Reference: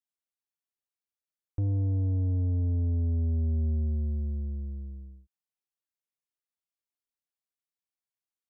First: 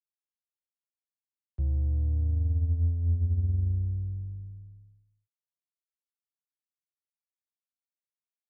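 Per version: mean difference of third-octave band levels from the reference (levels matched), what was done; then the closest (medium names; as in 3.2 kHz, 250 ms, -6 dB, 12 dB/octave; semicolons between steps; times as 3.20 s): 4.0 dB: frequency shift -170 Hz; upward expansion 2.5:1, over -43 dBFS; trim +2.5 dB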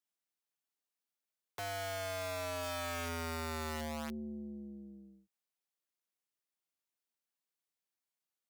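18.0 dB: high-pass 160 Hz 24 dB/octave; integer overflow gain 37 dB; trim +1 dB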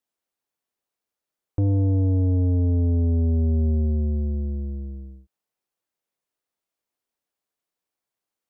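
1.0 dB: peaking EQ 500 Hz +8 dB 2.8 oct; trim +5 dB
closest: third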